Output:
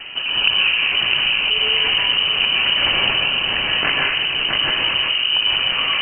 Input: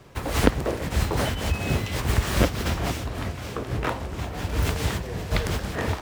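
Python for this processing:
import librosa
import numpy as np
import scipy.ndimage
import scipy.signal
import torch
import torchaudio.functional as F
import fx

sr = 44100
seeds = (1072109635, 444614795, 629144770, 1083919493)

p1 = x + fx.echo_single(x, sr, ms=658, db=-4.5, dry=0)
p2 = fx.rotary(p1, sr, hz=1.0)
p3 = fx.high_shelf(p2, sr, hz=2100.0, db=11.0, at=(2.81, 4.57))
p4 = fx.rev_freeverb(p3, sr, rt60_s=1.1, hf_ratio=0.35, predelay_ms=90, drr_db=-1.5)
p5 = fx.freq_invert(p4, sr, carrier_hz=3000)
y = fx.env_flatten(p5, sr, amount_pct=50)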